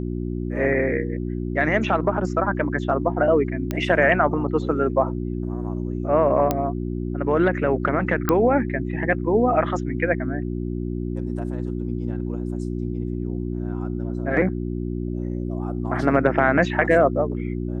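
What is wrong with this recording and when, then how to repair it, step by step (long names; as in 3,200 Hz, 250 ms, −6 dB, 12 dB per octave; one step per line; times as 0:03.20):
mains hum 60 Hz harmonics 6 −27 dBFS
0:03.71: click −12 dBFS
0:06.51: click −7 dBFS
0:08.29: click −6 dBFS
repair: click removal
hum removal 60 Hz, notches 6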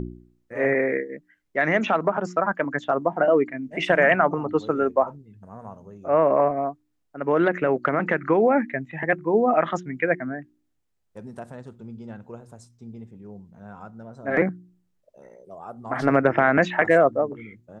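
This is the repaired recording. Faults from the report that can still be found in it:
none of them is left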